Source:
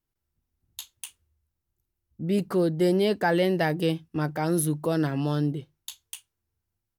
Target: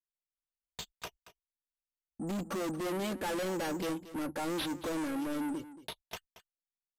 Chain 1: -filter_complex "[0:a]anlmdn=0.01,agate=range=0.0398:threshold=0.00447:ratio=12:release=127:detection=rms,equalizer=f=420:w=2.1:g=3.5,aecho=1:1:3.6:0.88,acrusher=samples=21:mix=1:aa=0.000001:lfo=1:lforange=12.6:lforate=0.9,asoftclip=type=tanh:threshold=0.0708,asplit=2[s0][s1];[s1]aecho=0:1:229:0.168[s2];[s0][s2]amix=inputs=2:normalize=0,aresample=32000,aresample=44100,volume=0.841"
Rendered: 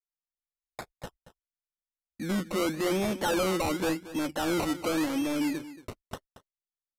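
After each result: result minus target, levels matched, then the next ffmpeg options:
decimation with a swept rate: distortion +11 dB; saturation: distortion -4 dB
-filter_complex "[0:a]anlmdn=0.01,agate=range=0.0398:threshold=0.00447:ratio=12:release=127:detection=rms,equalizer=f=420:w=2.1:g=3.5,aecho=1:1:3.6:0.88,acrusher=samples=5:mix=1:aa=0.000001:lfo=1:lforange=3:lforate=0.9,asoftclip=type=tanh:threshold=0.0708,asplit=2[s0][s1];[s1]aecho=0:1:229:0.168[s2];[s0][s2]amix=inputs=2:normalize=0,aresample=32000,aresample=44100,volume=0.841"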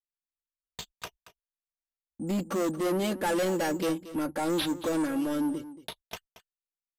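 saturation: distortion -4 dB
-filter_complex "[0:a]anlmdn=0.01,agate=range=0.0398:threshold=0.00447:ratio=12:release=127:detection=rms,equalizer=f=420:w=2.1:g=3.5,aecho=1:1:3.6:0.88,acrusher=samples=5:mix=1:aa=0.000001:lfo=1:lforange=3:lforate=0.9,asoftclip=type=tanh:threshold=0.0266,asplit=2[s0][s1];[s1]aecho=0:1:229:0.168[s2];[s0][s2]amix=inputs=2:normalize=0,aresample=32000,aresample=44100,volume=0.841"

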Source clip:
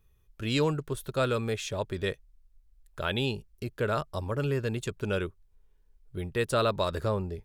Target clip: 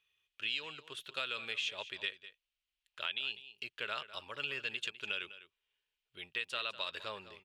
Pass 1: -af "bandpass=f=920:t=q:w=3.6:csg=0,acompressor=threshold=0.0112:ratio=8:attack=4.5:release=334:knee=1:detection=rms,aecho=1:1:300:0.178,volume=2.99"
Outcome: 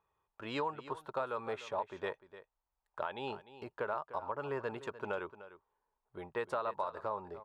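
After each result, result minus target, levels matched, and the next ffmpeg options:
4 kHz band -14.0 dB; echo 98 ms late
-af "bandpass=f=2900:t=q:w=3.6:csg=0,acompressor=threshold=0.0112:ratio=8:attack=4.5:release=334:knee=1:detection=rms,aecho=1:1:300:0.178,volume=2.99"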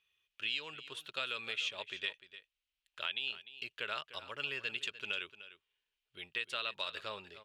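echo 98 ms late
-af "bandpass=f=2900:t=q:w=3.6:csg=0,acompressor=threshold=0.0112:ratio=8:attack=4.5:release=334:knee=1:detection=rms,aecho=1:1:202:0.178,volume=2.99"

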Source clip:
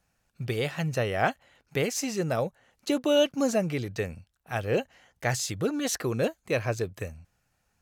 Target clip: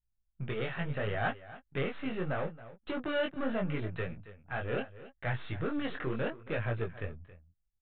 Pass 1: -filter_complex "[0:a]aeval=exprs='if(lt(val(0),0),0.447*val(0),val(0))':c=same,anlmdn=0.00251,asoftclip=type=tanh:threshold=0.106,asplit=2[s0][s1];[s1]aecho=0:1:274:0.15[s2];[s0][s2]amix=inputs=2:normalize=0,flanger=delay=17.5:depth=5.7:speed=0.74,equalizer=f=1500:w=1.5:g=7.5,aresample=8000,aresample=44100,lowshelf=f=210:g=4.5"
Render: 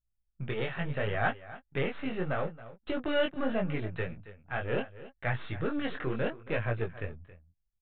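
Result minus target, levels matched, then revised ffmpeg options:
saturation: distortion -6 dB
-filter_complex "[0:a]aeval=exprs='if(lt(val(0),0),0.447*val(0),val(0))':c=same,anlmdn=0.00251,asoftclip=type=tanh:threshold=0.0501,asplit=2[s0][s1];[s1]aecho=0:1:274:0.15[s2];[s0][s2]amix=inputs=2:normalize=0,flanger=delay=17.5:depth=5.7:speed=0.74,equalizer=f=1500:w=1.5:g=7.5,aresample=8000,aresample=44100,lowshelf=f=210:g=4.5"

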